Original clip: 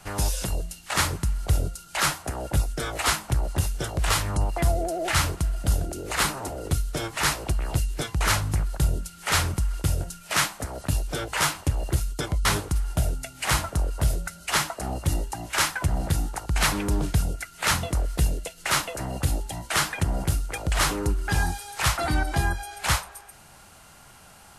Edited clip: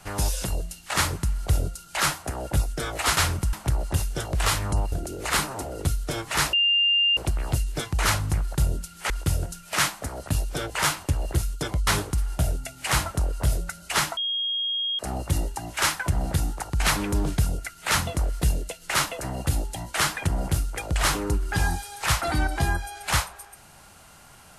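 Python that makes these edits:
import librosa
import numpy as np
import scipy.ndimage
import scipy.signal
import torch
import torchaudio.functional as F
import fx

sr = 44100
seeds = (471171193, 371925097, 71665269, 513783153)

y = fx.edit(x, sr, fx.cut(start_s=4.56, length_s=1.22),
    fx.insert_tone(at_s=7.39, length_s=0.64, hz=2800.0, db=-17.5),
    fx.move(start_s=9.32, length_s=0.36, to_s=3.17),
    fx.insert_tone(at_s=14.75, length_s=0.82, hz=3260.0, db=-24.0), tone=tone)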